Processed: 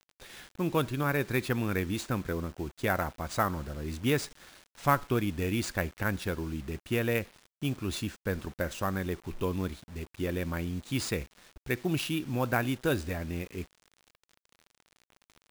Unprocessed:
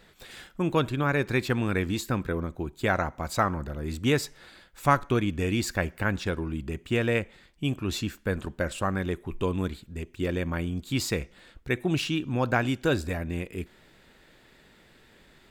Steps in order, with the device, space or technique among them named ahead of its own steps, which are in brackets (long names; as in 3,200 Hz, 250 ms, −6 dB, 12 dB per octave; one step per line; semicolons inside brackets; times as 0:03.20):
early 8-bit sampler (sample-rate reduction 14,000 Hz, jitter 0%; bit reduction 8 bits)
level −3.5 dB